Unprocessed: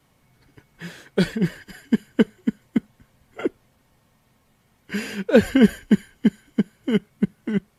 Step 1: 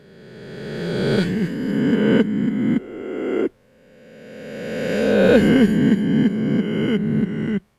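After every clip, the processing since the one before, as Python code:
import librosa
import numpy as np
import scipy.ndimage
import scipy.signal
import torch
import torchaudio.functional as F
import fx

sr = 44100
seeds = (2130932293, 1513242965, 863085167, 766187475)

y = fx.spec_swells(x, sr, rise_s=2.12)
y = fx.high_shelf(y, sr, hz=8400.0, db=-8.0)
y = y * librosa.db_to_amplitude(-2.5)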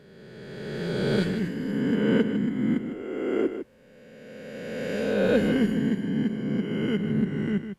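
y = fx.rider(x, sr, range_db=10, speed_s=2.0)
y = y + 10.0 ** (-9.5 / 20.0) * np.pad(y, (int(154 * sr / 1000.0), 0))[:len(y)]
y = y * librosa.db_to_amplitude(-8.0)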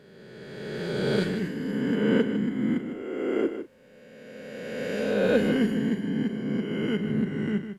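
y = fx.low_shelf(x, sr, hz=120.0, db=-6.5)
y = fx.doubler(y, sr, ms=38.0, db=-12.0)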